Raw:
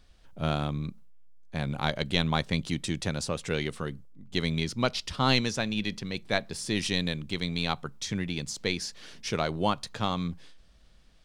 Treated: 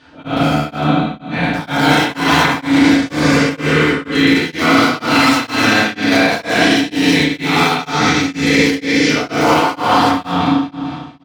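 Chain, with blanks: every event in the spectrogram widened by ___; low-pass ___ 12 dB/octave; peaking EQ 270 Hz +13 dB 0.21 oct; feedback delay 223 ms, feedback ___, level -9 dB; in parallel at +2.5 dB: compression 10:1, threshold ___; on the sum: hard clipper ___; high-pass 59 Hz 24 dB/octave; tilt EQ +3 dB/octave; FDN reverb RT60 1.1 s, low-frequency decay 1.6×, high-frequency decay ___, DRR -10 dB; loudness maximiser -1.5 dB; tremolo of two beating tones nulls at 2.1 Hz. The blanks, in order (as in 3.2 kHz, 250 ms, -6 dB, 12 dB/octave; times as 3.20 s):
480 ms, 2.7 kHz, 46%, -26 dBFS, -11.5 dBFS, 0.45×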